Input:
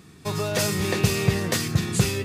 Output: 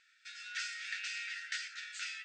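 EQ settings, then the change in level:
linear-phase brick-wall band-pass 1,300–8,800 Hz
high-frequency loss of the air 130 metres
parametric band 3,800 Hz −2.5 dB 0.77 octaves
−6.5 dB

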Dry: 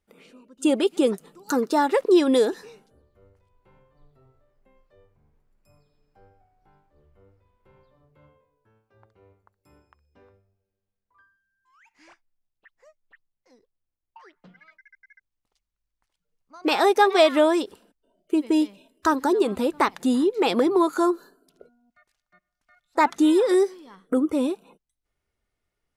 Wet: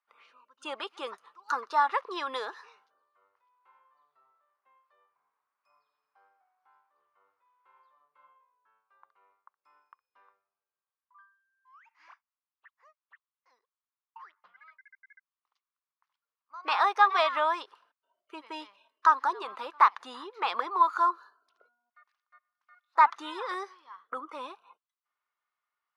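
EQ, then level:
high-pass with resonance 1,100 Hz, resonance Q 4.2
high-frequency loss of the air 91 metres
parametric band 7,700 Hz −12 dB 0.26 octaves
−6.0 dB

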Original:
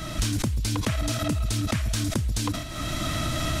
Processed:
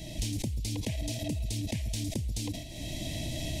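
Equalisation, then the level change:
Butterworth band-reject 1,300 Hz, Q 0.91
−7.0 dB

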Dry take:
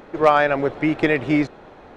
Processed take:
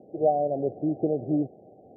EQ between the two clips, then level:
high-pass filter 90 Hz 24 dB per octave
Chebyshev low-pass filter 770 Hz, order 8
−5.5 dB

